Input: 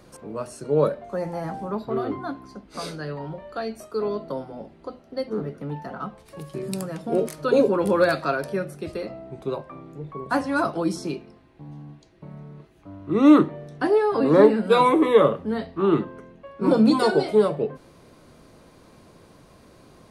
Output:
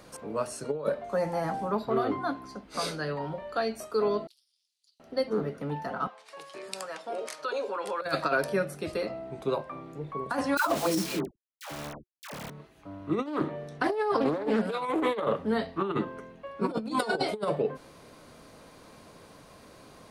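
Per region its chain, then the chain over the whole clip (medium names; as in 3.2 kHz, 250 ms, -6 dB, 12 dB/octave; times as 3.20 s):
4.27–5.00 s: inverse Chebyshev high-pass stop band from 820 Hz, stop band 80 dB + AM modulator 280 Hz, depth 75% + loudspeaker Doppler distortion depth 0.37 ms
6.07–8.02 s: band-pass 680–7200 Hz + compression 3:1, threshold -31 dBFS
10.57–12.50 s: word length cut 6-bit, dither none + phase dispersion lows, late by 110 ms, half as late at 750 Hz
13.26–15.48 s: compression 2.5:1, threshold -18 dBFS + loudspeaker Doppler distortion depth 0.23 ms
whole clip: bass shelf 310 Hz -7.5 dB; band-stop 360 Hz, Q 12; compressor with a negative ratio -26 dBFS, ratio -0.5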